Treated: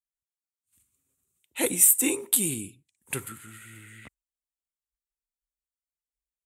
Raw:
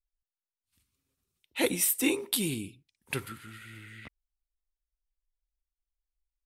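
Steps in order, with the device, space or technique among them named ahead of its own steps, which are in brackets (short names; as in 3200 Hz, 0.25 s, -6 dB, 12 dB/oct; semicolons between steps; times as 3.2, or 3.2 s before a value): budget condenser microphone (HPF 63 Hz; resonant high shelf 6200 Hz +6.5 dB, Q 3); spectral noise reduction 11 dB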